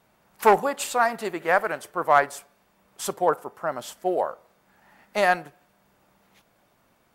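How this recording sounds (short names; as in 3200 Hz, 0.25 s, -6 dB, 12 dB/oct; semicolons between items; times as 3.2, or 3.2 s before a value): noise floor -65 dBFS; spectral tilt -3.0 dB/oct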